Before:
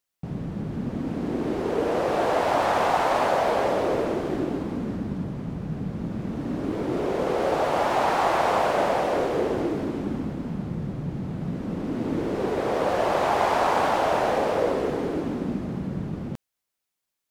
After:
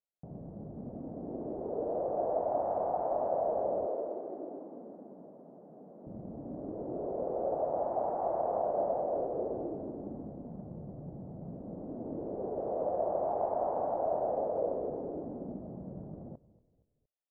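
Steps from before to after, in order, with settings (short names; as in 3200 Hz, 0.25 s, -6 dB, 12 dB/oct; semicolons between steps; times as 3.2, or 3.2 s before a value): 3.86–6.07 Bessel high-pass 360 Hz, order 4; short-mantissa float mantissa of 2-bit; ladder low-pass 750 Hz, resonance 55%; frequency-shifting echo 0.233 s, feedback 44%, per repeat -32 Hz, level -19.5 dB; gain -4.5 dB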